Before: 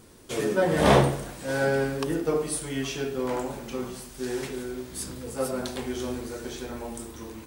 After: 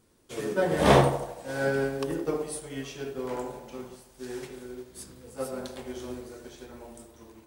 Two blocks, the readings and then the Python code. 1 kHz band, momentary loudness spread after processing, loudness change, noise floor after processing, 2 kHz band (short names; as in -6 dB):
-0.5 dB, 22 LU, -1.0 dB, -57 dBFS, -2.5 dB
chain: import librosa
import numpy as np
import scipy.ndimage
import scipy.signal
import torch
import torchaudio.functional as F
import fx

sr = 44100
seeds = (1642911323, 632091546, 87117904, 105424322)

y = fx.echo_banded(x, sr, ms=81, feedback_pct=75, hz=640.0, wet_db=-7)
y = fx.upward_expand(y, sr, threshold_db=-41.0, expansion=1.5)